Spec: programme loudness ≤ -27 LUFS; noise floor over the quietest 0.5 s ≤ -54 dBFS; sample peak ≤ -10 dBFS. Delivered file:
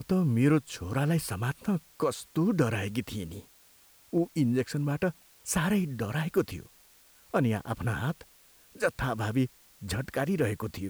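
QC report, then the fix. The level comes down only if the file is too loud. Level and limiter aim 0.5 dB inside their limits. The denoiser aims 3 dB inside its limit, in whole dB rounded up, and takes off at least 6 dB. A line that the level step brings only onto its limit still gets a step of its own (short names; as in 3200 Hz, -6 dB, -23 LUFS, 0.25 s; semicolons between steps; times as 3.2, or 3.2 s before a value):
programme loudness -30.0 LUFS: OK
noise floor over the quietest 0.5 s -59 dBFS: OK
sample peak -13.0 dBFS: OK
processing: none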